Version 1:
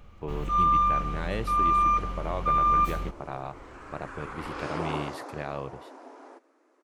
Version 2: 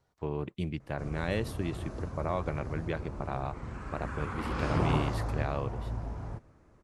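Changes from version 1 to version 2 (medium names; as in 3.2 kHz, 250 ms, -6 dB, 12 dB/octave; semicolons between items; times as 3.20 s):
first sound: muted; second sound: remove brick-wall FIR high-pass 250 Hz; master: add bass shelf 130 Hz +4.5 dB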